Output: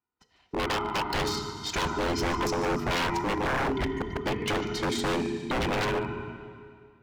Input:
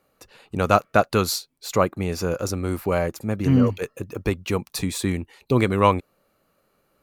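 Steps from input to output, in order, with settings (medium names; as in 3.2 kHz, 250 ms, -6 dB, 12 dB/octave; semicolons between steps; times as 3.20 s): every band turned upside down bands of 500 Hz; spectral gate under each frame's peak -25 dB strong; treble shelf 4.2 kHz +11 dB; compression 3:1, threshold -19 dBFS, peak gain reduction 7.5 dB; peak limiter -15 dBFS, peak gain reduction 8 dB; level rider gain up to 9 dB; power-law waveshaper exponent 1.4; distance through air 180 m; comb of notches 560 Hz; thinning echo 148 ms, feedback 56%, high-pass 300 Hz, level -14 dB; Schroeder reverb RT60 2.1 s, combs from 26 ms, DRR 8.5 dB; wavefolder -20.5 dBFS; trim -1.5 dB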